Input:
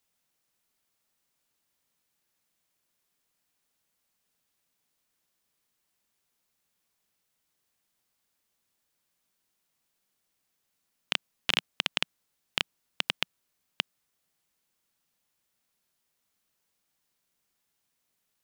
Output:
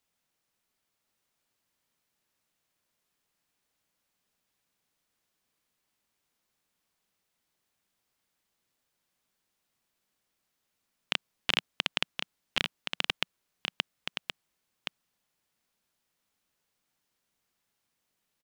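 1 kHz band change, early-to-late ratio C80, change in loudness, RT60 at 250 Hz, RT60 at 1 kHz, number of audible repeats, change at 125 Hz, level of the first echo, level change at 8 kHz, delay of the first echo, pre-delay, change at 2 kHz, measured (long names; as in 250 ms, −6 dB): +0.5 dB, no reverb audible, −1.5 dB, no reverb audible, no reverb audible, 1, +1.0 dB, −6.0 dB, −2.0 dB, 1,072 ms, no reverb audible, +0.5 dB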